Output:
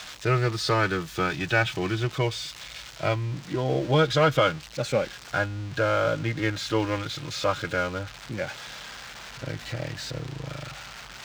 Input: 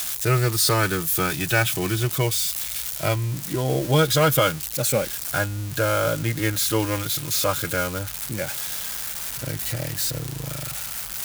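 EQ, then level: distance through air 170 m; bass shelf 240 Hz -5 dB; 0.0 dB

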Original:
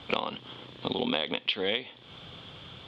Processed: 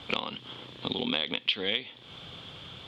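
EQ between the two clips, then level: treble shelf 4.5 kHz +6.5 dB; dynamic bell 670 Hz, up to -6 dB, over -44 dBFS, Q 0.83; 0.0 dB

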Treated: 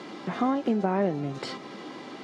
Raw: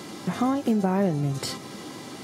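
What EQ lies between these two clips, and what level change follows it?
band-pass 230–3400 Hz; 0.0 dB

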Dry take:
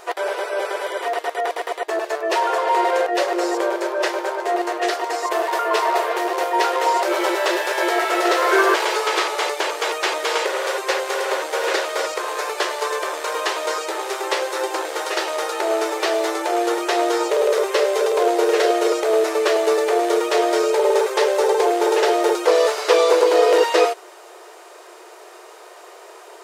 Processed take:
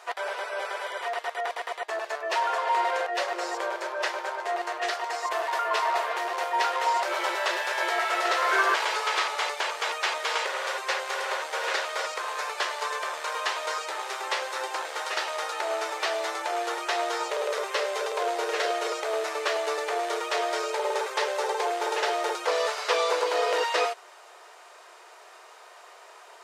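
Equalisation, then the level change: high-pass 770 Hz 12 dB/octave; treble shelf 10 kHz -11.5 dB; -4.0 dB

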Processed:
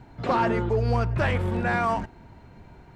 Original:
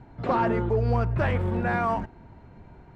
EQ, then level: treble shelf 2.9 kHz +11 dB; 0.0 dB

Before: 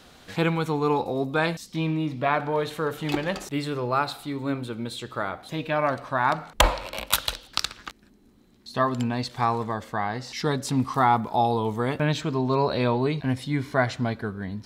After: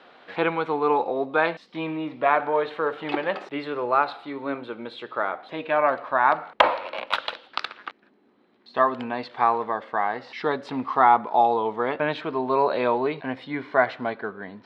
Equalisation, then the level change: band-pass 450–7400 Hz; distance through air 410 m; +6.0 dB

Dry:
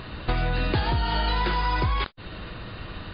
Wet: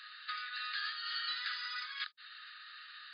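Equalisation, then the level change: rippled Chebyshev high-pass 1.2 kHz, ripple 9 dB; -2.5 dB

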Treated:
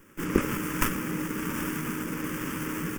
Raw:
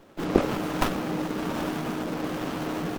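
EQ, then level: treble shelf 3.3 kHz +11.5 dB; static phaser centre 1.7 kHz, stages 4; 0.0 dB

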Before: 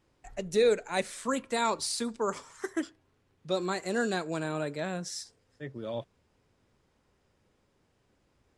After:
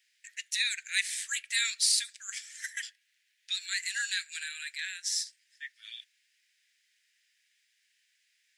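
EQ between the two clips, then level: steep high-pass 1.7 kHz 72 dB/octave; +8.0 dB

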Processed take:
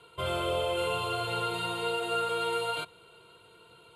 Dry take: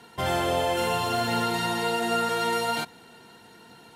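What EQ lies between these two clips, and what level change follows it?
low-pass 11 kHz 24 dB/octave; static phaser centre 1.2 kHz, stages 8; -2.0 dB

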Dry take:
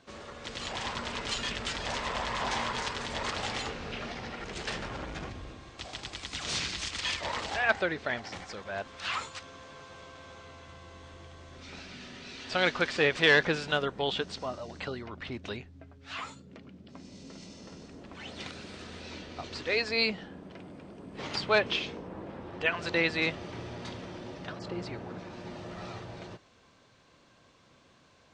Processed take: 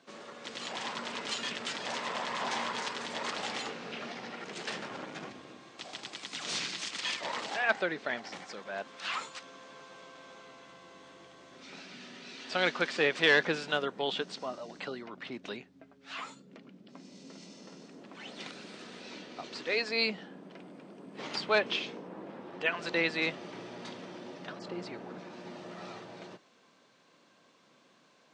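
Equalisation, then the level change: high-pass 170 Hz 24 dB/octave; -2.0 dB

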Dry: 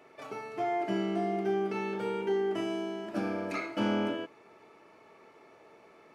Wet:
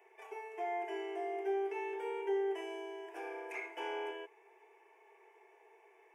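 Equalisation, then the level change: elliptic high-pass 390 Hz, stop band 40 dB; static phaser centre 860 Hz, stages 8; -3.0 dB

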